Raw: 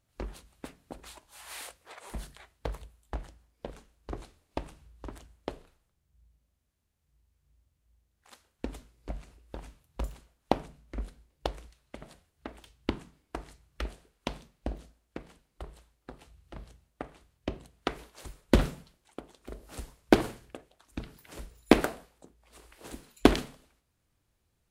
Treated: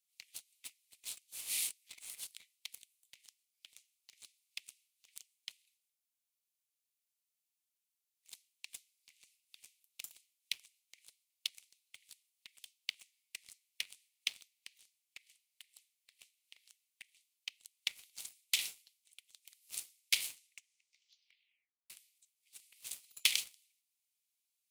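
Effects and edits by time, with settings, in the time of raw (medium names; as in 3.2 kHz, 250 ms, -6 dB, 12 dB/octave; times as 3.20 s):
12.98–17.04 s: resonant high-pass 1.4 kHz, resonance Q 1.8
20.27 s: tape stop 1.63 s
whole clip: steep high-pass 2.1 kHz 72 dB/octave; tilt EQ +3.5 dB/octave; waveshaping leveller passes 2; trim -8.5 dB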